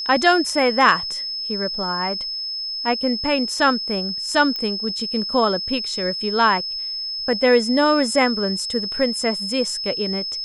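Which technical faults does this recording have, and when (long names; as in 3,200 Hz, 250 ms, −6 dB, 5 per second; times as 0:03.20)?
whistle 5,200 Hz −25 dBFS
0:04.56: click −14 dBFS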